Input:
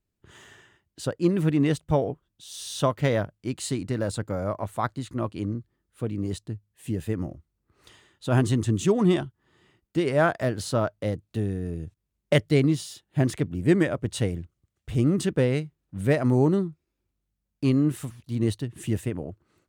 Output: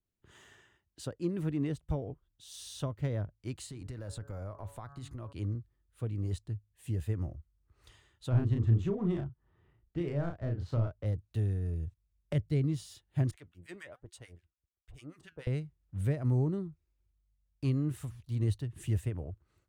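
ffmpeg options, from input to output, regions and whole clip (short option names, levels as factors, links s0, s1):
-filter_complex "[0:a]asettb=1/sr,asplit=3[s0][s1][s2];[s0]atrim=end=3.664[s3];[s1]atrim=start=3.66:end=5.33,asetpts=PTS-STARTPTS,afade=t=in:d=0.004:c=qsin,afade=t=out:st=1.666:d=0.004:c=qsin,bandreject=f=140.6:t=h:w=4,bandreject=f=281.2:t=h:w=4,bandreject=f=421.8:t=h:w=4,bandreject=f=562.4:t=h:w=4,bandreject=f=703:t=h:w=4,bandreject=f=843.6:t=h:w=4,bandreject=f=984.2:t=h:w=4,bandreject=f=1124.8:t=h:w=4,bandreject=f=1265.4:t=h:w=4,bandreject=f=1406:t=h:w=4,bandreject=f=1546.6:t=h:w=4,bandreject=f=1687.2:t=h:w=4,bandreject=f=1827.8:t=h:w=4,acompressor=threshold=0.0282:ratio=6:attack=3.2:release=140:knee=1:detection=peak[s4];[s2]atrim=start=5.326[s5];[s3][s4]acrossfade=d=0.004:c1=hsin:c2=qsin[s6];[s6][s5]acrossfade=d=0.004:c1=qsin:c2=hsin,asettb=1/sr,asplit=3[s7][s8][s9];[s7]atrim=end=8.304[s10];[s8]atrim=start=8.3:end=11.06,asetpts=PTS-STARTPTS,afade=t=in:d=0.004:c=qsin,afade=t=out:st=2.756:d=0.004:c=qsin,adynamicsmooth=sensitivity=2:basefreq=1800,asplit=2[s11][s12];[s12]adelay=35,volume=0.631[s13];[s11][s13]amix=inputs=2:normalize=0,atrim=end_sample=121716[s14];[s9]atrim=start=11.056[s15];[s10][s14]acrossfade=d=0.004:c1=hsin:c2=qsin[s16];[s16][s15]acrossfade=d=0.004:c1=qsin:c2=hsin,asettb=1/sr,asplit=3[s17][s18][s19];[s17]atrim=end=13.314[s20];[s18]atrim=start=13.31:end=15.47,asetpts=PTS-STARTPTS,afade=t=in:d=0.004:c=qsin,afade=t=out:st=2.156:d=0.004:c=qsin,equalizer=f=100:w=0.32:g=-14.5,acrossover=split=1100[s21][s22];[s21]aeval=exprs='val(0)*(1-1/2+1/2*cos(2*PI*6.8*n/s))':c=same[s23];[s22]aeval=exprs='val(0)*(1-1/2-1/2*cos(2*PI*6.8*n/s))':c=same[s24];[s23][s24]amix=inputs=2:normalize=0,flanger=delay=2.7:depth=3.7:regen=83:speed=1.2:shape=sinusoidal[s25];[s19]atrim=start=15.466[s26];[s20][s25]acrossfade=d=0.004:c1=hsin:c2=qsin[s27];[s27][s26]acrossfade=d=0.004:c1=qsin:c2=hsin,asubboost=boost=7.5:cutoff=78,acrossover=split=380[s28][s29];[s29]acompressor=threshold=0.02:ratio=6[s30];[s28][s30]amix=inputs=2:normalize=0,adynamicequalizer=threshold=0.00562:dfrequency=1700:dqfactor=0.7:tfrequency=1700:tqfactor=0.7:attack=5:release=100:ratio=0.375:range=2:mode=cutabove:tftype=highshelf,volume=0.398"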